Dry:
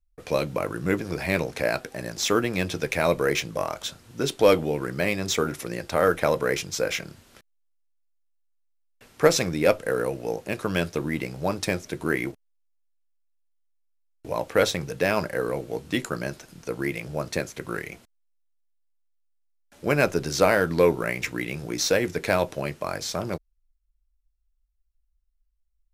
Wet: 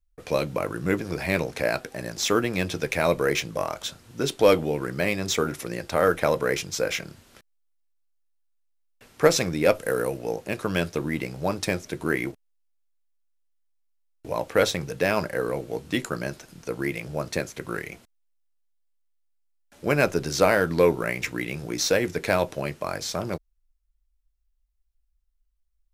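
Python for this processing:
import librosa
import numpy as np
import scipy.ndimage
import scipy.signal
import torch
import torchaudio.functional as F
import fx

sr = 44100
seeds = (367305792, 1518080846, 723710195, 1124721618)

y = fx.high_shelf(x, sr, hz=fx.line((9.74, 6700.0), (10.17, 12000.0)), db=10.0, at=(9.74, 10.17), fade=0.02)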